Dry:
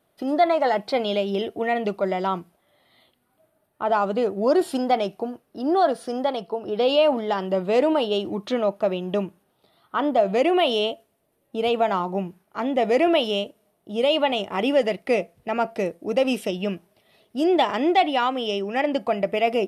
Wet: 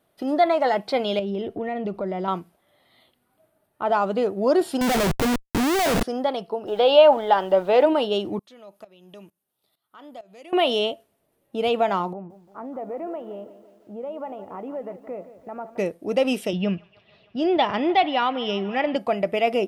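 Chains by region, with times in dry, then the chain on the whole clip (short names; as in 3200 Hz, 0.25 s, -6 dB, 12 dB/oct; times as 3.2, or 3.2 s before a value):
1.19–2.28 tilt -2.5 dB/oct + compressor 3:1, threshold -26 dBFS
4.81–6.03 low shelf 270 Hz +11 dB + Schmitt trigger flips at -36.5 dBFS
6.66–7.85 speaker cabinet 240–4700 Hz, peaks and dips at 250 Hz -4 dB, 580 Hz +5 dB, 850 Hz +9 dB, 1500 Hz +6 dB, 3400 Hz +5 dB + added noise pink -57 dBFS
8.39–10.53 pre-emphasis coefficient 0.8 + compressor 2:1, threshold -40 dBFS + tremolo saw up 2.2 Hz, depth 85%
12.13–15.78 compressor 2:1, threshold -29 dBFS + ladder low-pass 1500 Hz, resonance 25% + lo-fi delay 0.171 s, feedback 55%, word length 10-bit, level -13.5 dB
16.53–18.96 LPF 5100 Hz 24 dB/oct + resonant low shelf 210 Hz +6.5 dB, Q 1.5 + band-limited delay 0.152 s, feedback 82%, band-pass 1600 Hz, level -20 dB
whole clip: dry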